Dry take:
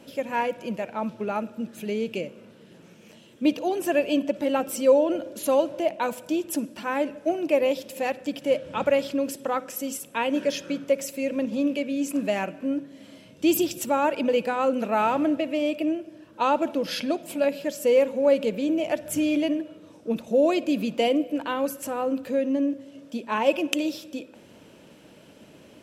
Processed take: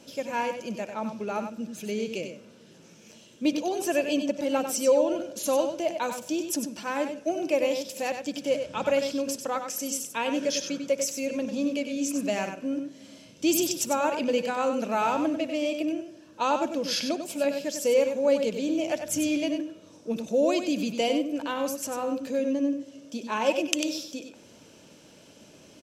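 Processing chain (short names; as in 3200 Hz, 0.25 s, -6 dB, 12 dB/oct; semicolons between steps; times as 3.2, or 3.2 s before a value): bell 6000 Hz +11.5 dB 0.97 oct; notch 1900 Hz, Q 23; on a send: echo 96 ms -7.5 dB; on the sum: gain -3.5 dB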